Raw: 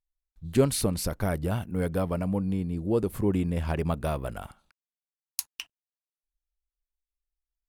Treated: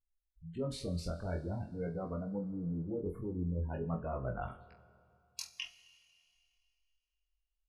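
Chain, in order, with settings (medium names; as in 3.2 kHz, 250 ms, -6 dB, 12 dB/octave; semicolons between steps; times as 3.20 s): spectral gate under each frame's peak -20 dB strong; low-pass 4.9 kHz 12 dB/octave; reverse; compression 6:1, threshold -36 dBFS, peak gain reduction 19 dB; reverse; chorus 0.45 Hz, delay 15.5 ms, depth 7 ms; on a send: flutter echo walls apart 4.1 m, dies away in 0.21 s; on the sum: Schroeder reverb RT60 2.6 s, combs from 26 ms, DRR 15.5 dB; trim +3 dB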